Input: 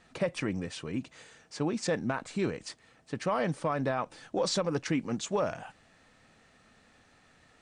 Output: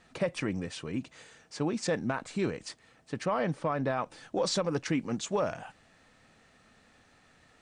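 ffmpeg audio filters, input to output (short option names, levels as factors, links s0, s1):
-filter_complex "[0:a]asettb=1/sr,asplit=3[s0][s1][s2];[s0]atrim=end=3.254[s3];[s1]atrim=start=3.25:end=3.9,asetpts=PTS-STARTPTS,afade=t=in:d=0.004:c=qsin,afade=t=out:st=0.646:d=0.004:c=qsin,highshelf=f=6500:g=-12[s4];[s2]atrim=start=3.896[s5];[s3][s4]acrossfade=d=0.004:c1=hsin:c2=qsin[s6];[s6][s5]acrossfade=d=0.004:c1=qsin:c2=hsin"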